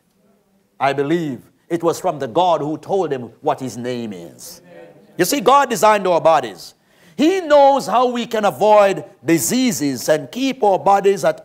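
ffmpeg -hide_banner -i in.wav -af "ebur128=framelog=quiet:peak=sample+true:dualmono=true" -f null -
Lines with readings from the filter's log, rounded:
Integrated loudness:
  I:         -13.6 LUFS
  Threshold: -24.4 LUFS
Loudness range:
  LRA:         6.0 LU
  Threshold: -34.2 LUFS
  LRA low:   -18.1 LUFS
  LRA high:  -12.1 LUFS
Sample peak:
  Peak:       -1.5 dBFS
True peak:
  Peak:       -1.5 dBFS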